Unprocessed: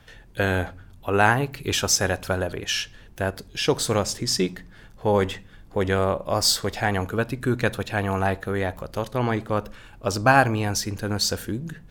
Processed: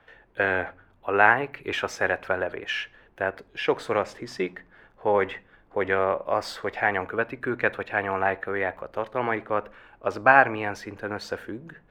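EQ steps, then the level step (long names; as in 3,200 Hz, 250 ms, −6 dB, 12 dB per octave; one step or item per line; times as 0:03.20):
three-way crossover with the lows and the highs turned down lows −15 dB, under 320 Hz, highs −23 dB, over 2,500 Hz
dynamic equaliser 2,100 Hz, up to +7 dB, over −44 dBFS, Q 1.7
0.0 dB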